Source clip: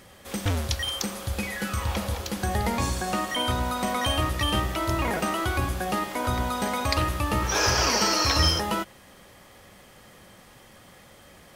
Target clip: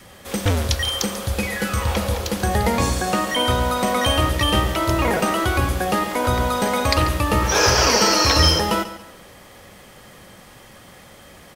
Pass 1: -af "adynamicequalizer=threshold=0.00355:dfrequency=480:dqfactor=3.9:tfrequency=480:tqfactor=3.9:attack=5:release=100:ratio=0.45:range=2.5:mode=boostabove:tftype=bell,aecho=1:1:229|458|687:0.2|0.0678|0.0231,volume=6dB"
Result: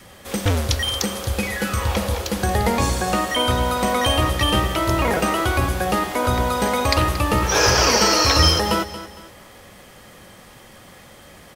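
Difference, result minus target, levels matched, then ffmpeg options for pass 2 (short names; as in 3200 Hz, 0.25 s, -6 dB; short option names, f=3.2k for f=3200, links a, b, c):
echo 89 ms late
-af "adynamicequalizer=threshold=0.00355:dfrequency=480:dqfactor=3.9:tfrequency=480:tqfactor=3.9:attack=5:release=100:ratio=0.45:range=2.5:mode=boostabove:tftype=bell,aecho=1:1:140|280|420:0.2|0.0678|0.0231,volume=6dB"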